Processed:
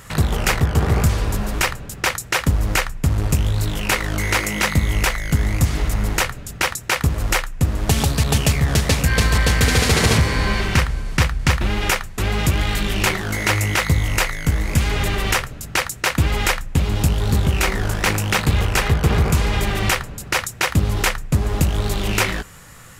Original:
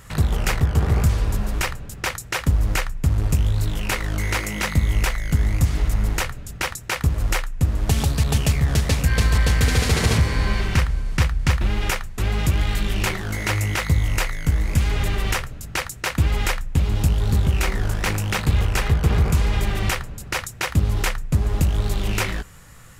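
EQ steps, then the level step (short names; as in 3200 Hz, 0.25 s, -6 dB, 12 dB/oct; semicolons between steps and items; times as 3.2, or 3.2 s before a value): low shelf 110 Hz -7.5 dB; +5.5 dB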